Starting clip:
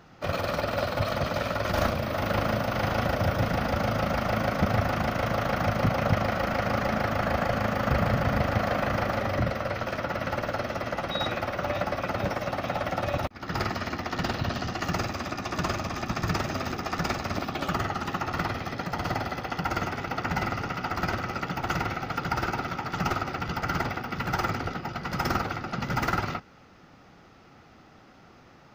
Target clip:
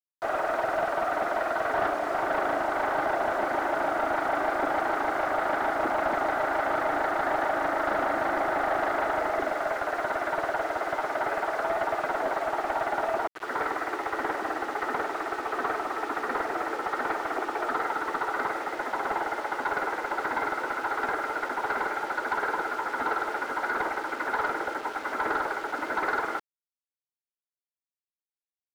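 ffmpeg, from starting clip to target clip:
-filter_complex "[0:a]highpass=f=240:t=q:w=0.5412,highpass=f=240:t=q:w=1.307,lowpass=f=2000:t=q:w=0.5176,lowpass=f=2000:t=q:w=0.7071,lowpass=f=2000:t=q:w=1.932,afreqshift=78,acrusher=bits=6:mix=0:aa=0.000001,asplit=2[s0][s1];[s1]highpass=f=720:p=1,volume=6.31,asoftclip=type=tanh:threshold=0.211[s2];[s0][s2]amix=inputs=2:normalize=0,lowpass=f=1300:p=1,volume=0.501,volume=0.794"

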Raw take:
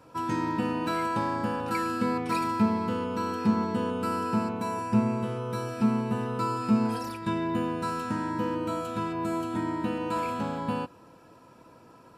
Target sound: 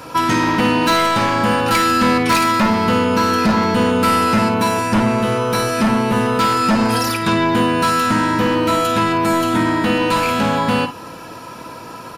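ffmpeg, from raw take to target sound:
-filter_complex "[0:a]tiltshelf=f=1100:g=-4.5,bandreject=f=7800:w=7.9,asplit=2[s0][s1];[s1]acompressor=threshold=0.0141:ratio=6,volume=0.944[s2];[s0][s2]amix=inputs=2:normalize=0,aeval=exprs='0.2*sin(PI/2*2.51*val(0)/0.2)':c=same,aecho=1:1:52|53:0.237|0.224,volume=1.5"

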